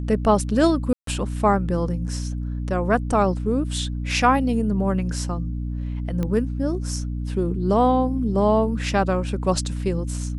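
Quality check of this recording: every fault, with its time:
hum 60 Hz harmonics 5 -27 dBFS
0.93–1.07 gap 0.143 s
6.23 pop -15 dBFS

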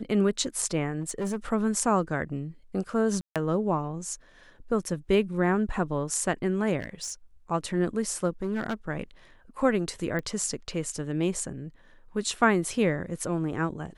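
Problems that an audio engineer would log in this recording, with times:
1–1.36 clipped -26 dBFS
3.21–3.36 gap 0.147 s
6.79–7.12 clipped -29 dBFS
8.42–8.74 clipped -24.5 dBFS
10.19 pop -20 dBFS

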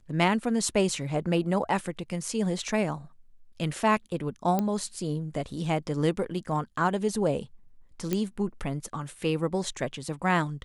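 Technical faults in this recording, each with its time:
4.59 pop -14 dBFS
8.13 pop -13 dBFS

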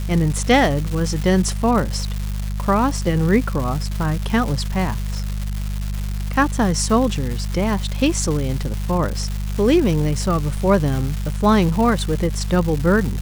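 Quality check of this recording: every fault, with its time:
crackle 440/s -24 dBFS
hum 50 Hz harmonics 4 -24 dBFS

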